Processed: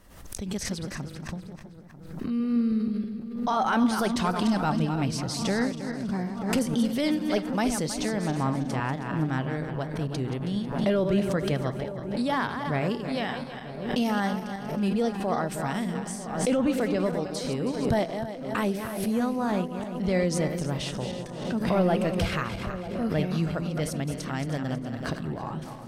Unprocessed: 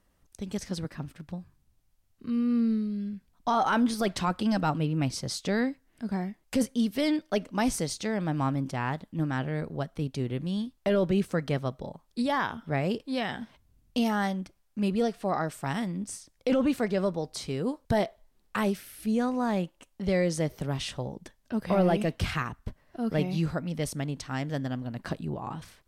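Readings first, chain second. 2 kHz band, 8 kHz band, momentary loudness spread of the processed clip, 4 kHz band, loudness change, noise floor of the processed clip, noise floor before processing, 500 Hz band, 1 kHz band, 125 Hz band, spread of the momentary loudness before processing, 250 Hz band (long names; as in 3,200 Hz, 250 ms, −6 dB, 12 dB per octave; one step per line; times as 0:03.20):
+1.5 dB, +3.0 dB, 9 LU, +2.0 dB, +1.5 dB, −40 dBFS, −68 dBFS, +2.0 dB, +1.5 dB, +2.0 dB, 11 LU, +2.0 dB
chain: feedback delay that plays each chunk backwards 160 ms, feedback 60%, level −8 dB
delay with a low-pass on its return 943 ms, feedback 57%, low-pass 1,500 Hz, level −14 dB
background raised ahead of every attack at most 60 dB per second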